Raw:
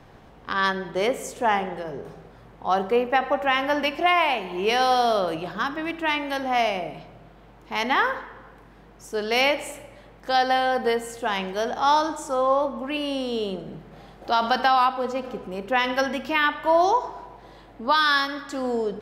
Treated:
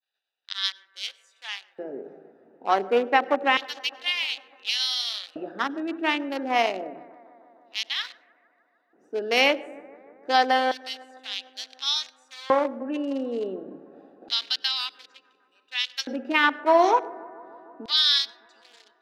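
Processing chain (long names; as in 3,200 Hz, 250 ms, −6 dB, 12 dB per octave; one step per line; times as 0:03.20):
adaptive Wiener filter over 41 samples
downward expander −46 dBFS
meter weighting curve A
auto-filter high-pass square 0.28 Hz 270–3,800 Hz
bucket-brigade delay 151 ms, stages 2,048, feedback 77%, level −23.5 dB
convolution reverb RT60 0.25 s, pre-delay 91 ms, DRR 28.5 dB
level +2 dB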